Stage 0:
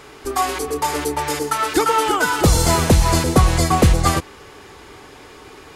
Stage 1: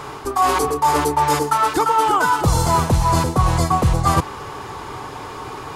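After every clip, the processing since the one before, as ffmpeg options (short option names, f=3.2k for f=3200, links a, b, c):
-af "equalizer=f=125:t=o:w=1:g=9,equalizer=f=1k:t=o:w=1:g=11,equalizer=f=2k:t=o:w=1:g=-3,areverse,acompressor=threshold=-19dB:ratio=6,areverse,volume=5dB"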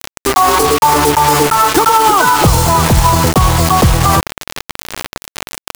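-af "acrusher=bits=3:mix=0:aa=0.000001,alimiter=level_in=12dB:limit=-1dB:release=50:level=0:latency=1,volume=-1dB"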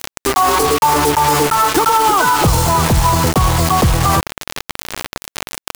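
-af "acompressor=mode=upward:threshold=-12dB:ratio=2.5,asoftclip=type=tanh:threshold=-1.5dB,volume=-2dB"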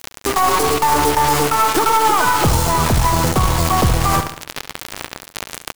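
-af "aeval=exprs='0.668*(cos(1*acos(clip(val(0)/0.668,-1,1)))-cos(1*PI/2))+0.168*(cos(2*acos(clip(val(0)/0.668,-1,1)))-cos(2*PI/2))':c=same,aecho=1:1:70|140|210|280:0.316|0.133|0.0558|0.0234,volume=-3dB"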